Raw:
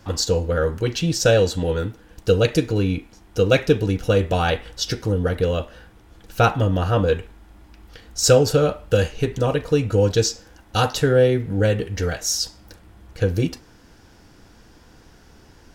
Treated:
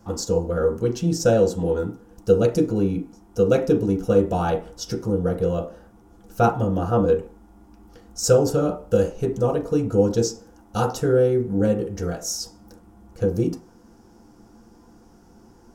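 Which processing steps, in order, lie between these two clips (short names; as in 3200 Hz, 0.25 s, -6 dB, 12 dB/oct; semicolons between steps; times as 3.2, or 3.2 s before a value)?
band shelf 2700 Hz -10 dB; on a send: reverb RT60 0.35 s, pre-delay 3 ms, DRR 2 dB; on the sum: gain -4.5 dB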